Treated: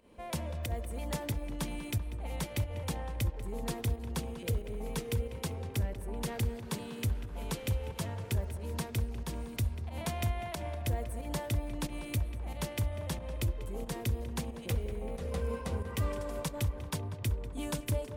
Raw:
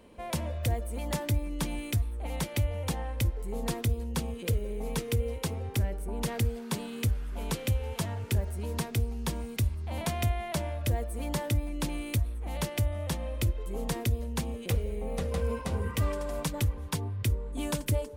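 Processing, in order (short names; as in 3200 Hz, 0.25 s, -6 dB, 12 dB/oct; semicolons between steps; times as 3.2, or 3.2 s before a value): pump 91 bpm, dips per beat 1, -11 dB, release 0.141 s; tape echo 0.194 s, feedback 77%, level -10 dB, low-pass 2500 Hz; gain -4 dB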